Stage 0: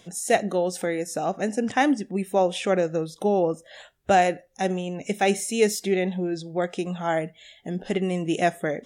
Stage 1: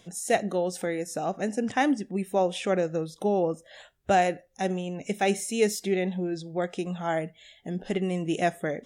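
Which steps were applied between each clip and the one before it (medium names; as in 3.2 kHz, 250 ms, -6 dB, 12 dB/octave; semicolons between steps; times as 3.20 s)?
bass shelf 130 Hz +4 dB; trim -3.5 dB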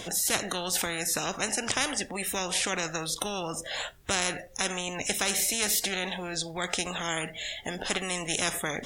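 spectrum-flattening compressor 4:1; trim +1.5 dB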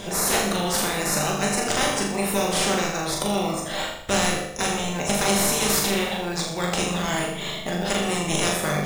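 in parallel at -4 dB: sample-and-hold 14×; on the sum: flutter echo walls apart 6.9 m, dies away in 0.66 s; simulated room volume 300 m³, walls furnished, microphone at 1.2 m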